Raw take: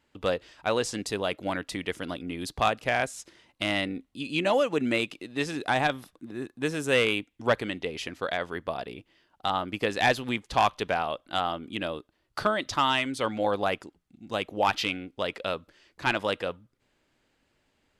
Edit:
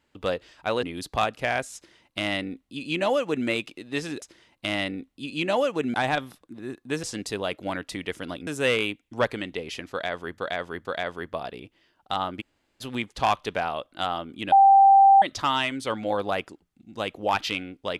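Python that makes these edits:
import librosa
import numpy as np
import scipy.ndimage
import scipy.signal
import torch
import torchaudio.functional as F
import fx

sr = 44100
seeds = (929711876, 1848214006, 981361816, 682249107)

y = fx.edit(x, sr, fx.move(start_s=0.83, length_s=1.44, to_s=6.75),
    fx.duplicate(start_s=3.19, length_s=1.72, to_s=5.66),
    fx.repeat(start_s=8.19, length_s=0.47, count=3),
    fx.room_tone_fill(start_s=9.75, length_s=0.4, crossfade_s=0.02),
    fx.bleep(start_s=11.86, length_s=0.7, hz=785.0, db=-11.0), tone=tone)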